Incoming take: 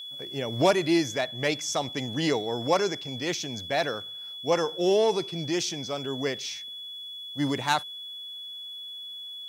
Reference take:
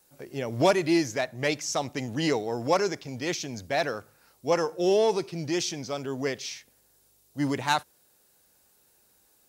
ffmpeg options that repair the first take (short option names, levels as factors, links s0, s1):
-af "bandreject=f=3400:w=30"